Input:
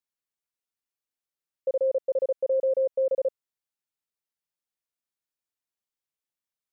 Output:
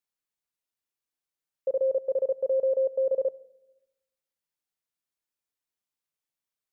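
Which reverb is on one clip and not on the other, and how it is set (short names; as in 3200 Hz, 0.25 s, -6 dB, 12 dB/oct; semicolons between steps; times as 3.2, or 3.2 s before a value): shoebox room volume 3200 m³, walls furnished, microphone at 0.43 m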